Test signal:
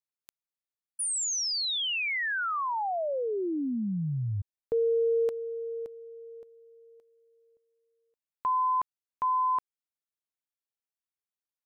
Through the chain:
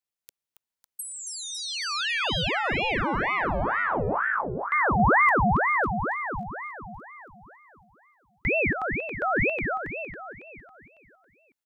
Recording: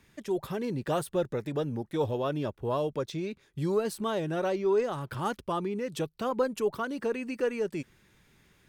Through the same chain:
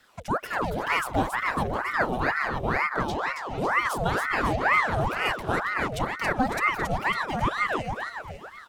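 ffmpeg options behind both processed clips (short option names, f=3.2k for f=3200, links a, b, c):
-filter_complex "[0:a]acrossover=split=220|1500|2800[a][b][c][d];[d]acompressor=threshold=-42dB:ratio=6:attack=99[e];[a][b][c][e]amix=inputs=4:normalize=0,aecho=1:1:276|552|828|1104|1380|1656|1932:0.596|0.304|0.155|0.079|0.0403|0.0206|0.0105,aeval=exprs='val(0)*sin(2*PI*960*n/s+960*0.75/2.1*sin(2*PI*2.1*n/s))':c=same,volume=5.5dB"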